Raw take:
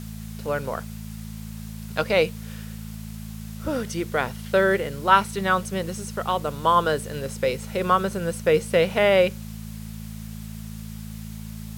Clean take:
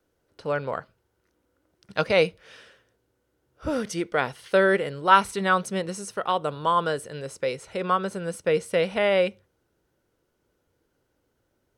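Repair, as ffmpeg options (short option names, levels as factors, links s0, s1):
-af "adeclick=t=4,bandreject=f=54.4:t=h:w=4,bandreject=f=108.8:t=h:w=4,bandreject=f=163.2:t=h:w=4,bandreject=f=217.6:t=h:w=4,afwtdn=0.0045,asetnsamples=n=441:p=0,asendcmd='6.64 volume volume -3.5dB',volume=1"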